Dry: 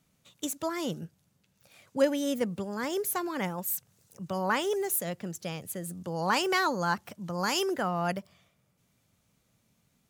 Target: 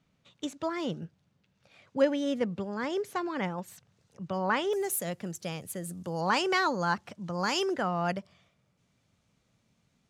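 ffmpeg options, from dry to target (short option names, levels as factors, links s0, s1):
-af "asetnsamples=n=441:p=0,asendcmd='4.73 lowpass f 12000;6.21 lowpass f 6300',lowpass=4100"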